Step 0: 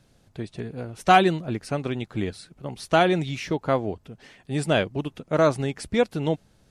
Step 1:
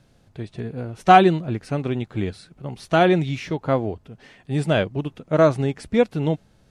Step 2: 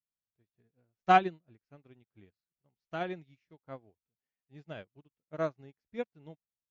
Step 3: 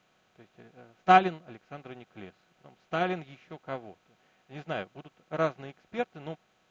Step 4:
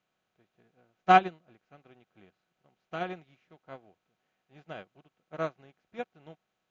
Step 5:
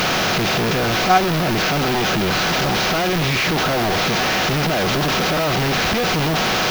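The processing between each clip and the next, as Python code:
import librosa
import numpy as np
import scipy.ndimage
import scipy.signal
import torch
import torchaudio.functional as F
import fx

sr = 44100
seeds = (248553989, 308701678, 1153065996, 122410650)

y1 = fx.high_shelf(x, sr, hz=5200.0, db=-6.0)
y1 = fx.hpss(y1, sr, part='harmonic', gain_db=6)
y1 = y1 * 10.0 ** (-1.0 / 20.0)
y2 = scipy.signal.sosfilt(scipy.signal.cheby1(6, 3, 7000.0, 'lowpass', fs=sr, output='sos'), y1)
y2 = fx.upward_expand(y2, sr, threshold_db=-38.0, expansion=2.5)
y2 = y2 * 10.0 ** (-7.0 / 20.0)
y3 = fx.bin_compress(y2, sr, power=0.6)
y3 = y3 * 10.0 ** (2.5 / 20.0)
y4 = fx.upward_expand(y3, sr, threshold_db=-41.0, expansion=1.5)
y5 = fx.delta_mod(y4, sr, bps=32000, step_db=-17.0)
y5 = fx.dmg_noise_colour(y5, sr, seeds[0], colour='violet', level_db=-40.0)
y5 = y5 * 10.0 ** (4.5 / 20.0)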